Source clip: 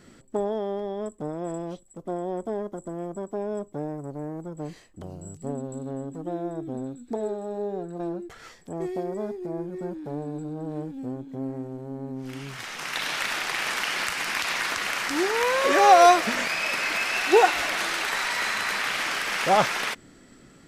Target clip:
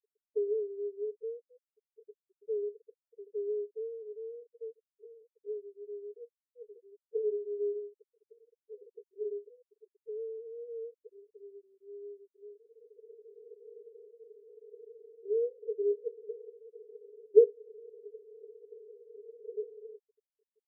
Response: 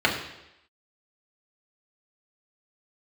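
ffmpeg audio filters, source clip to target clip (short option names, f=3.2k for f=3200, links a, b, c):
-af "asuperpass=centerf=440:order=12:qfactor=6,afftfilt=real='re*gte(hypot(re,im),0.00794)':imag='im*gte(hypot(re,im),0.00794)':win_size=1024:overlap=0.75"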